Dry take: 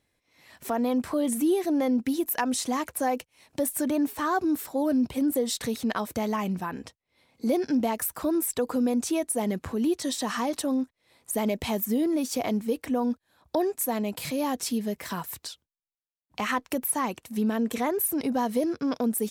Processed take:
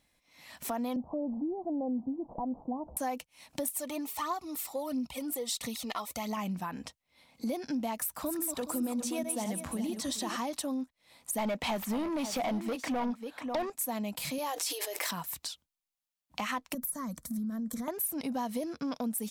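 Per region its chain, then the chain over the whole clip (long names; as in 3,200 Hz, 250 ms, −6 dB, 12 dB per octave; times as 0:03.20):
0:00.96–0:02.97: linear delta modulator 64 kbit/s, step −39 dBFS + Butterworth low-pass 880 Hz 48 dB per octave
0:03.65–0:06.37: low-shelf EQ 420 Hz −9 dB + phase shifter 1.5 Hz, feedback 51% + Butterworth band-reject 1,600 Hz, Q 5.2
0:07.97–0:10.37: feedback delay that plays each chunk backwards 211 ms, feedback 43%, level −6.5 dB + mains-hum notches 60/120/180 Hz
0:11.38–0:13.70: single-tap delay 543 ms −14 dB + mid-hump overdrive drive 21 dB, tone 1,800 Hz, clips at −14.5 dBFS
0:14.38–0:15.11: linear-phase brick-wall high-pass 300 Hz + envelope flattener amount 100%
0:16.74–0:17.88: bass and treble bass +14 dB, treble +4 dB + downward compressor 5 to 1, threshold −28 dBFS + phaser with its sweep stopped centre 550 Hz, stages 8
whole clip: graphic EQ with 15 bands 100 Hz −10 dB, 400 Hz −11 dB, 1,600 Hz −4 dB; downward compressor 2 to 1, threshold −42 dBFS; level +4 dB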